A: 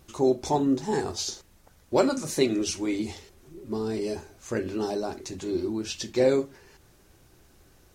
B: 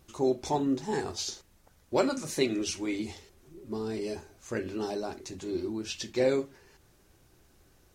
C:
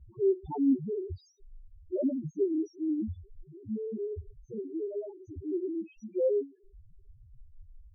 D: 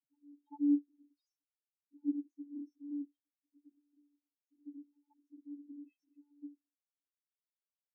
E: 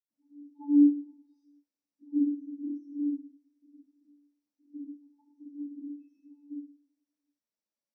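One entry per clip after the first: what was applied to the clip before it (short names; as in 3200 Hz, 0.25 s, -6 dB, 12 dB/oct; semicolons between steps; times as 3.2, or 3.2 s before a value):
dynamic EQ 2400 Hz, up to +4 dB, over -43 dBFS, Q 0.89; gain -4.5 dB
loudest bins only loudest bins 1; tilt -4.5 dB/oct
vocoder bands 32, square 289 Hz; gain -8.5 dB
reverb, pre-delay 77 ms; gain -2 dB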